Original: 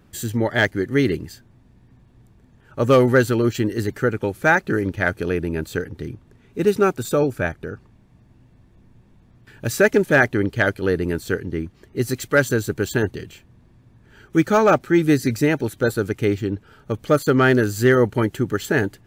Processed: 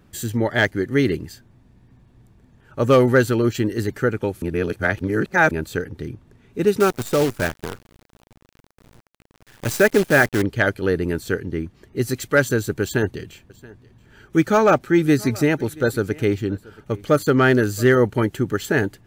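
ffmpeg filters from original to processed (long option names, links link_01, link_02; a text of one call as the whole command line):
ffmpeg -i in.wav -filter_complex "[0:a]asettb=1/sr,asplit=3[link_01][link_02][link_03];[link_01]atrim=end=6.804[link_04];[link_02]atrim=start=6.8:end=10.42,asetpts=PTS-STARTPTS,afade=type=in:duration=0.004:curve=qsin,afade=type=out:start_time=3.616:duration=0.004:curve=qsin,acrusher=bits=5:dc=4:mix=0:aa=0.000001[link_05];[link_03]atrim=start=10.416[link_06];[link_04][link_05]acrossfade=duration=0.004:curve1=hsin:curve2=qsin[link_07];[link_07][link_06]acrossfade=duration=0.004:curve1=qsin:curve2=hsin,asettb=1/sr,asplit=3[link_08][link_09][link_10];[link_08]atrim=end=12.824[link_11];[link_09]atrim=start=12.82:end=17.97,asetpts=PTS-STARTPTS,afade=type=in:duration=0.004:curve=qsin,afade=type=out:start_time=5.146:duration=0.004:curve=qsin,aecho=1:1:678:0.075,atrim=end_sample=227115[link_12];[link_10]atrim=start=17.966[link_13];[link_11][link_12]acrossfade=duration=0.004:curve1=hsin:curve2=qsin[link_14];[link_14][link_13]acrossfade=duration=0.004:curve1=qsin:curve2=hsin,asplit=3[link_15][link_16][link_17];[link_15]atrim=end=4.422[link_18];[link_16]atrim=start=4.418:end=5.512,asetpts=PTS-STARTPTS,areverse[link_19];[link_17]atrim=start=5.508[link_20];[link_18][link_19]acrossfade=duration=0.004:curve1=hsin:curve2=hsin[link_21];[link_21][link_20]acrossfade=duration=0.004:curve1=hsin:curve2=hsin" out.wav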